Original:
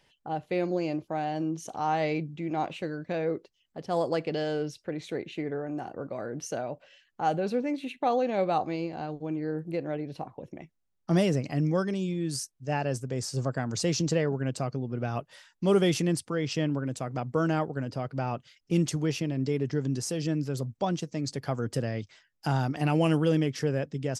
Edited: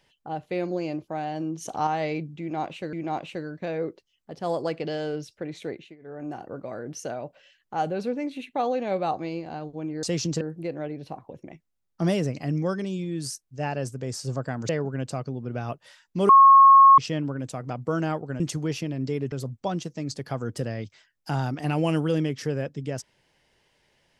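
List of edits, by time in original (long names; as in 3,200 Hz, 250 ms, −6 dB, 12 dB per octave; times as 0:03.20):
0:01.61–0:01.87: clip gain +5 dB
0:02.40–0:02.93: repeat, 2 plays
0:05.17–0:05.73: duck −20.5 dB, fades 0.26 s
0:13.78–0:14.16: move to 0:09.50
0:15.76–0:16.45: beep over 1,090 Hz −9 dBFS
0:17.87–0:18.79: remove
0:19.71–0:20.49: remove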